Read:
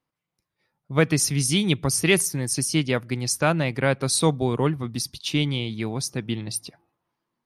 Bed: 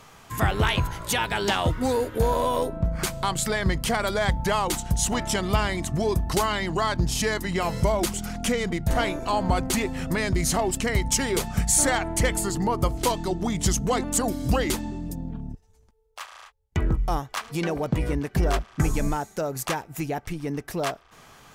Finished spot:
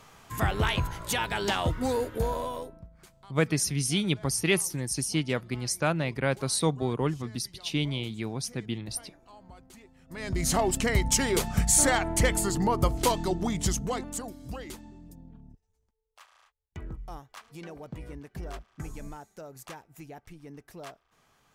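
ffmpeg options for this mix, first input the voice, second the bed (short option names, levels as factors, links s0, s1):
-filter_complex "[0:a]adelay=2400,volume=0.531[s0];[1:a]volume=13.3,afade=t=out:st=2.03:d=0.85:silence=0.0668344,afade=t=in:st=10.08:d=0.49:silence=0.0473151,afade=t=out:st=13.25:d=1.08:silence=0.177828[s1];[s0][s1]amix=inputs=2:normalize=0"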